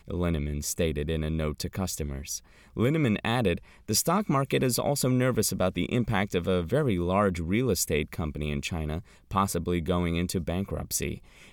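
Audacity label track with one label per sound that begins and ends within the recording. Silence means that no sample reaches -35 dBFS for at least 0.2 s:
2.760000	3.580000	sound
3.880000	8.990000	sound
9.310000	11.170000	sound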